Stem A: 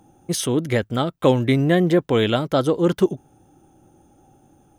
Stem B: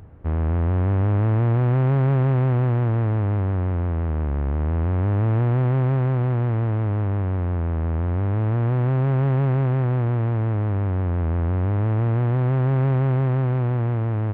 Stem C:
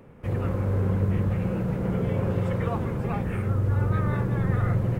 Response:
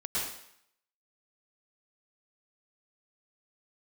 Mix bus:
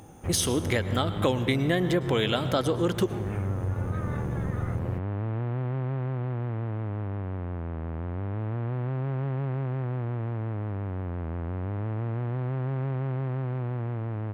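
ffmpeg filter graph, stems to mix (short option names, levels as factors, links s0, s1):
-filter_complex "[0:a]tiltshelf=f=970:g=-3.5,volume=1.41,asplit=2[s0][s1];[s1]volume=0.1[s2];[1:a]highpass=94,volume=0.473[s3];[2:a]volume=0.596[s4];[3:a]atrim=start_sample=2205[s5];[s2][s5]afir=irnorm=-1:irlink=0[s6];[s0][s3][s4][s6]amix=inputs=4:normalize=0,acompressor=threshold=0.0501:ratio=2.5"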